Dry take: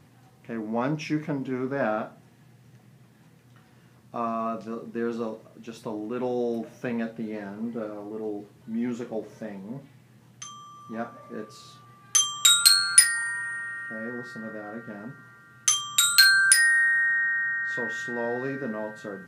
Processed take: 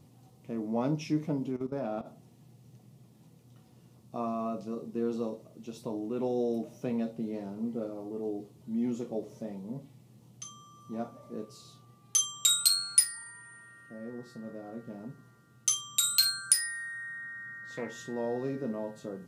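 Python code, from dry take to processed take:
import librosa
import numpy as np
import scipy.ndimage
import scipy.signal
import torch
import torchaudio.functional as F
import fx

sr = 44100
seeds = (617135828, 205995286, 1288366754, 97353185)

y = fx.level_steps(x, sr, step_db=15, at=(1.5, 2.05), fade=0.02)
y = fx.doppler_dist(y, sr, depth_ms=0.14, at=(16.76, 17.92))
y = fx.peak_eq(y, sr, hz=1700.0, db=-13.5, octaves=1.3)
y = fx.notch(y, sr, hz=1600.0, q=13.0)
y = fx.rider(y, sr, range_db=3, speed_s=2.0)
y = y * librosa.db_to_amplitude(-4.5)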